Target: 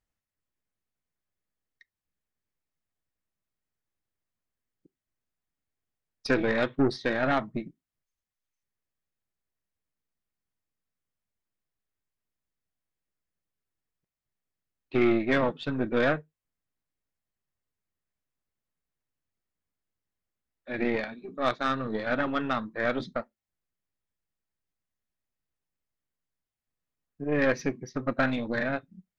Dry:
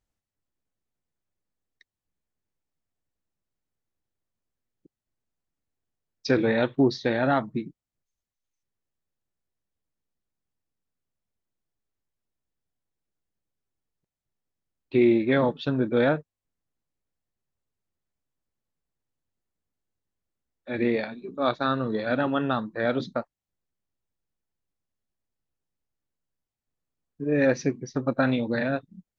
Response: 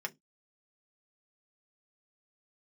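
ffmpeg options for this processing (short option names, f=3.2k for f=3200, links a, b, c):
-filter_complex "[0:a]aeval=exprs='0.376*(cos(1*acos(clip(val(0)/0.376,-1,1)))-cos(1*PI/2))+0.0335*(cos(6*acos(clip(val(0)/0.376,-1,1)))-cos(6*PI/2))':c=same,asplit=2[a][b];[b]tiltshelf=f=630:g=-10[c];[1:a]atrim=start_sample=2205,lowpass=3.3k[d];[c][d]afir=irnorm=-1:irlink=0,volume=-12.5dB[e];[a][e]amix=inputs=2:normalize=0,volume=-3.5dB"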